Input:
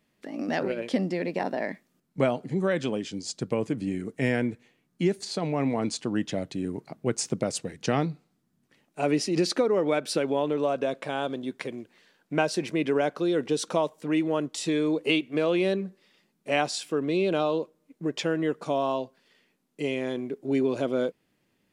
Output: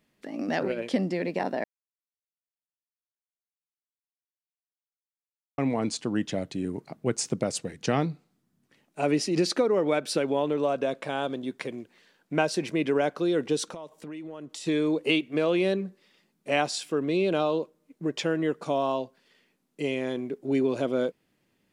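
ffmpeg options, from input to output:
-filter_complex "[0:a]asettb=1/sr,asplit=3[s0][s1][s2];[s0]atrim=end=13.684[s3];[s1]atrim=start=13.68:end=14.67,asetpts=PTS-STARTPTS,afade=t=in:d=0.004:c=qsin,afade=t=out:st=0.986:d=0.004:c=qsin,acompressor=threshold=0.0158:ratio=8:attack=3.2:release=140:knee=1:detection=peak[s4];[s2]atrim=start=14.666[s5];[s3][s4]acrossfade=d=0.004:c1=hsin:c2=qsin[s6];[s6][s5]acrossfade=d=0.004:c1=qsin:c2=hsin,asplit=3[s7][s8][s9];[s7]atrim=end=1.64,asetpts=PTS-STARTPTS,afade=t=out:st=1.636:d=0.004:c=hsin[s10];[s8]atrim=start=1.64:end=5.58,asetpts=PTS-STARTPTS,volume=0[s11];[s9]atrim=start=5.58,asetpts=PTS-STARTPTS,afade=t=in:d=0.004:c=hsin[s12];[s10][s11][s12]concat=n=3:v=0:a=1"

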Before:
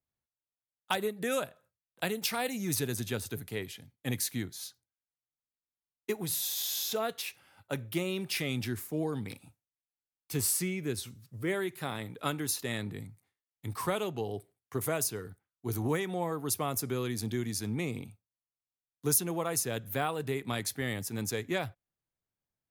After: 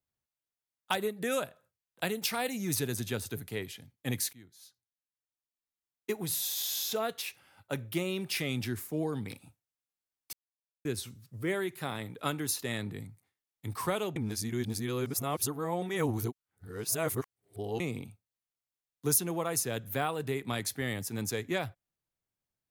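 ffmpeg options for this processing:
-filter_complex "[0:a]asplit=6[s0][s1][s2][s3][s4][s5];[s0]atrim=end=4.33,asetpts=PTS-STARTPTS,afade=t=out:st=4.326:d=0.004:c=hsin:silence=0.0794328[s6];[s1]atrim=start=4.33:end=10.33,asetpts=PTS-STARTPTS,afade=t=in:d=1.88:silence=0.0794328,afade=t=out:st=5.996:d=0.004:c=hsin[s7];[s2]atrim=start=10.33:end=10.85,asetpts=PTS-STARTPTS,volume=0[s8];[s3]atrim=start=10.85:end=14.162,asetpts=PTS-STARTPTS,afade=t=in:d=0.004:c=hsin[s9];[s4]atrim=start=14.158:end=17.802,asetpts=PTS-STARTPTS,areverse[s10];[s5]atrim=start=17.798[s11];[s6][s7][s8][s9]concat=n=4:v=0:a=1[s12];[s12][s10]acrossfade=d=0.004:c1=hsin:c2=hsin[s13];[s13][s11]acrossfade=d=0.004:c1=hsin:c2=hsin"

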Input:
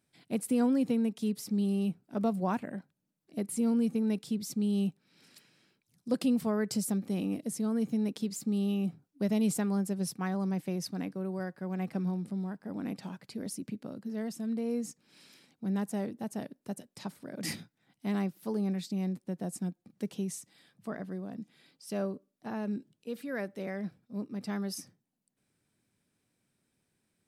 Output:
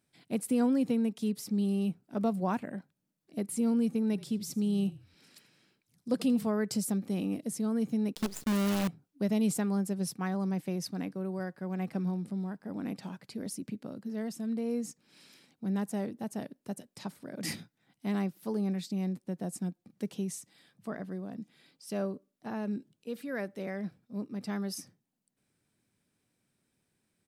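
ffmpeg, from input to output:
-filter_complex "[0:a]asplit=3[s0][s1][s2];[s0]afade=t=out:st=4.12:d=0.02[s3];[s1]asplit=4[s4][s5][s6][s7];[s5]adelay=83,afreqshift=-36,volume=0.119[s8];[s6]adelay=166,afreqshift=-72,volume=0.0367[s9];[s7]adelay=249,afreqshift=-108,volume=0.0115[s10];[s4][s8][s9][s10]amix=inputs=4:normalize=0,afade=t=in:st=4.12:d=0.02,afade=t=out:st=6.46:d=0.02[s11];[s2]afade=t=in:st=6.46:d=0.02[s12];[s3][s11][s12]amix=inputs=3:normalize=0,asettb=1/sr,asplit=3[s13][s14][s15];[s13]atrim=end=8.154[s16];[s14]atrim=start=8.15:end=8.88,asetpts=PTS-STARTPTS,afade=t=in:d=0.004:c=qsin,afade=t=out:st=0.726:d=0.004:c=qsin,acrusher=bits=6:dc=4:mix=0:aa=0.000001[s17];[s15]atrim=start=8.876[s18];[s16][s17]acrossfade=d=0.004:c1=hsin:c2=qsin[s19];[s19][s18]acrossfade=d=0.004:c1=qsin:c2=hsin"

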